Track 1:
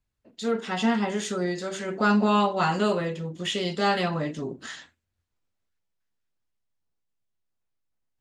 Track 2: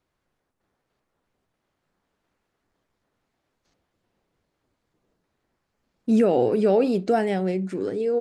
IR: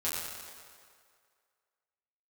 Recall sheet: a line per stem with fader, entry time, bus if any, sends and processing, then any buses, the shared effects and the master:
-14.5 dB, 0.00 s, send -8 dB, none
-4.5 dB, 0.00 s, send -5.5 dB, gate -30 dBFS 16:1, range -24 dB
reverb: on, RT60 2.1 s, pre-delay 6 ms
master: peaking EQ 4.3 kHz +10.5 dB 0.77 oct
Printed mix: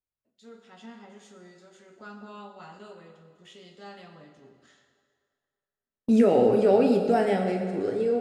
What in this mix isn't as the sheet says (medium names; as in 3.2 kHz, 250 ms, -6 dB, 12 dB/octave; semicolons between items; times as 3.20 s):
stem 1 -14.5 dB -> -25.0 dB; master: missing peaking EQ 4.3 kHz +10.5 dB 0.77 oct